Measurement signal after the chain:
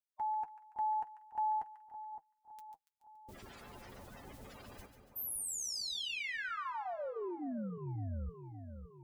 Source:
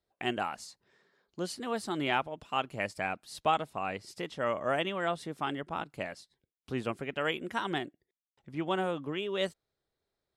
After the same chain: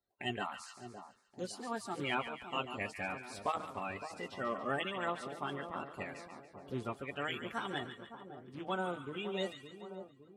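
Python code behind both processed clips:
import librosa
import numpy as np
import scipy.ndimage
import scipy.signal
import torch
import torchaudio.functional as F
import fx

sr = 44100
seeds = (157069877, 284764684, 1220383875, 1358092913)

y = fx.spec_quant(x, sr, step_db=30)
y = fx.notch_comb(y, sr, f0_hz=160.0)
y = fx.echo_split(y, sr, split_hz=1100.0, low_ms=563, high_ms=142, feedback_pct=52, wet_db=-9.5)
y = y * librosa.db_to_amplitude(-4.0)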